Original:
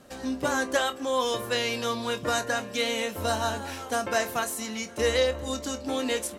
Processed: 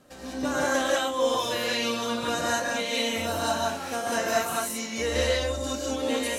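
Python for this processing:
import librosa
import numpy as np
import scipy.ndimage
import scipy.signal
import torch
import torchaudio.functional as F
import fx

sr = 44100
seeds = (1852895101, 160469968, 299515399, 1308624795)

y = fx.rev_gated(x, sr, seeds[0], gate_ms=220, shape='rising', drr_db=-5.5)
y = F.gain(torch.from_numpy(y), -5.0).numpy()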